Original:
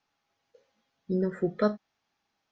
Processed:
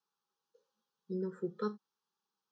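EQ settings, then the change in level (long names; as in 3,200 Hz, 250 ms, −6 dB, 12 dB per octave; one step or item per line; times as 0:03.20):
high-pass filter 200 Hz 12 dB per octave
parametric band 700 Hz −15 dB 0.22 octaves
phaser with its sweep stopped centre 420 Hz, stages 8
−6.5 dB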